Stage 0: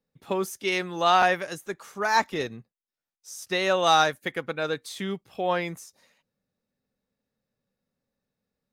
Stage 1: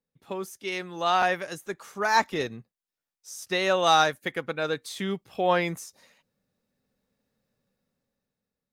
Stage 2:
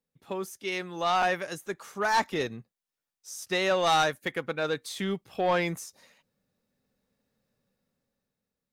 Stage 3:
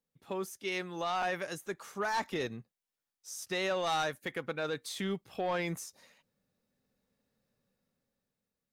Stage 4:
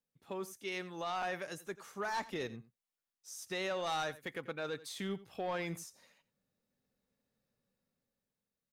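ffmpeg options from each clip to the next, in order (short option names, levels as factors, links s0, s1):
-af "dynaudnorm=f=290:g=9:m=4.73,volume=0.473"
-af "asoftclip=type=tanh:threshold=0.133"
-af "alimiter=limit=0.0668:level=0:latency=1:release=46,volume=0.75"
-af "aecho=1:1:88:0.133,volume=0.596"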